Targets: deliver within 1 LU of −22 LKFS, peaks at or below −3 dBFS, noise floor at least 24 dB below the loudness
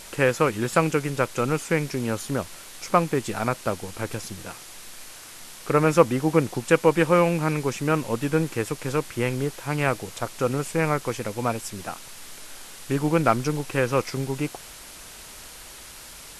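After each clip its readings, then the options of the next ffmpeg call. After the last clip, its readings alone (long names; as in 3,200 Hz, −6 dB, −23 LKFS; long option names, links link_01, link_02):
background noise floor −43 dBFS; target noise floor −49 dBFS; integrated loudness −24.5 LKFS; sample peak −3.0 dBFS; target loudness −22.0 LKFS
→ -af "afftdn=noise_reduction=6:noise_floor=-43"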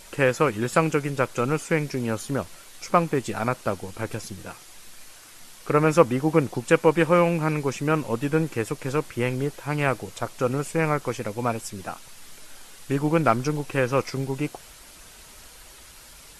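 background noise floor −47 dBFS; target noise floor −49 dBFS
→ -af "afftdn=noise_reduction=6:noise_floor=-47"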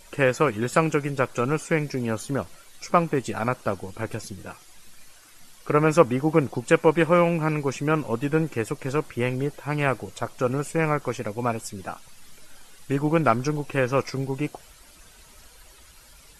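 background noise floor −51 dBFS; integrated loudness −24.5 LKFS; sample peak −3.0 dBFS; target loudness −22.0 LKFS
→ -af "volume=2.5dB,alimiter=limit=-3dB:level=0:latency=1"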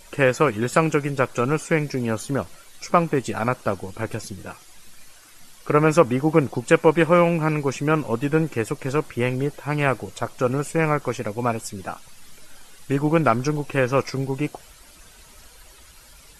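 integrated loudness −22.0 LKFS; sample peak −3.0 dBFS; background noise floor −49 dBFS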